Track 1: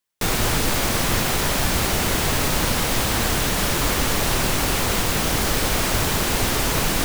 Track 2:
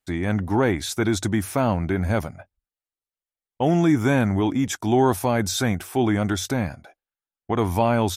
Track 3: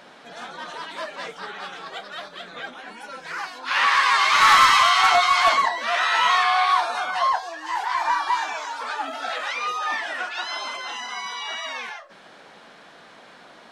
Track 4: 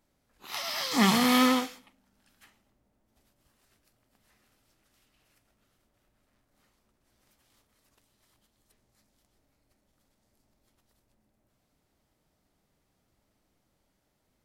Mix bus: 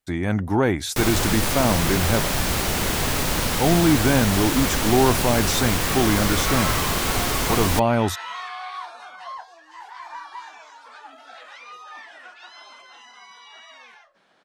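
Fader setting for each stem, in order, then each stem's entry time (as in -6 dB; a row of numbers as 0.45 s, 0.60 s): -2.0 dB, +0.5 dB, -14.5 dB, -19.5 dB; 0.75 s, 0.00 s, 2.05 s, 1.80 s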